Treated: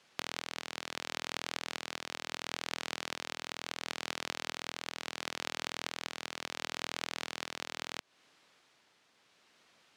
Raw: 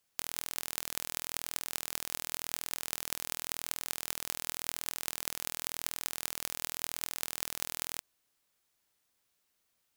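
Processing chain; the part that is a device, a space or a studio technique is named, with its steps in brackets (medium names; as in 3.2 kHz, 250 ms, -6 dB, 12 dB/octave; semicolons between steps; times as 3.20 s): AM radio (band-pass 150–4100 Hz; compression 4:1, threshold -50 dBFS, peak gain reduction 12.5 dB; saturation -28.5 dBFS, distortion -20 dB; tremolo 0.72 Hz, depth 32%); trim +18 dB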